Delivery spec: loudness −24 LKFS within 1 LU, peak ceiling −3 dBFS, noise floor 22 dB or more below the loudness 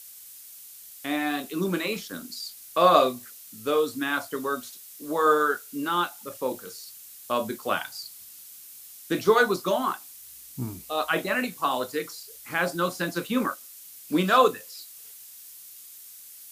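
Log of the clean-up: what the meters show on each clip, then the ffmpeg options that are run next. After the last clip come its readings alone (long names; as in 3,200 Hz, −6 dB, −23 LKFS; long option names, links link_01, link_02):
background noise floor −46 dBFS; target noise floor −49 dBFS; integrated loudness −26.5 LKFS; sample peak −4.0 dBFS; target loudness −24.0 LKFS
→ -af "afftdn=noise_reduction=6:noise_floor=-46"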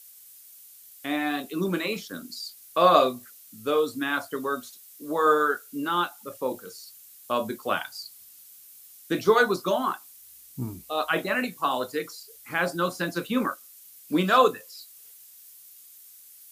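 background noise floor −50 dBFS; integrated loudness −26.0 LKFS; sample peak −4.0 dBFS; target loudness −24.0 LKFS
→ -af "volume=2dB,alimiter=limit=-3dB:level=0:latency=1"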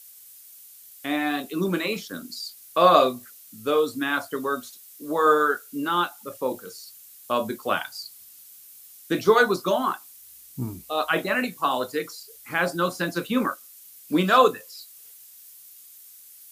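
integrated loudness −24.0 LKFS; sample peak −3.0 dBFS; background noise floor −48 dBFS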